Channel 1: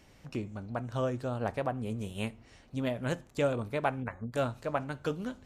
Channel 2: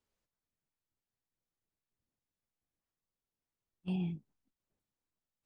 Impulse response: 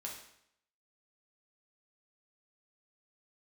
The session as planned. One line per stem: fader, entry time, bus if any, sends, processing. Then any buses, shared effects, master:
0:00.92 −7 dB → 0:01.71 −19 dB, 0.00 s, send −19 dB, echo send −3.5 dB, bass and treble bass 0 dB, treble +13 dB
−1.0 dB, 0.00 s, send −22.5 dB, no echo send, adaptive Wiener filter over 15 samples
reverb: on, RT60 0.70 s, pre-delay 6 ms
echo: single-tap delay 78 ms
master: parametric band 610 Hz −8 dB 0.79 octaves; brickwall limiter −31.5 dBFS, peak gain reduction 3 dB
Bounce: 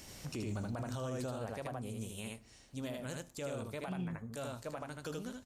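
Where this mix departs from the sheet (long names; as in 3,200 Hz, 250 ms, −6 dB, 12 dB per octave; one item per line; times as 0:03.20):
stem 1 −7.0 dB → +3.5 dB
master: missing parametric band 610 Hz −8 dB 0.79 octaves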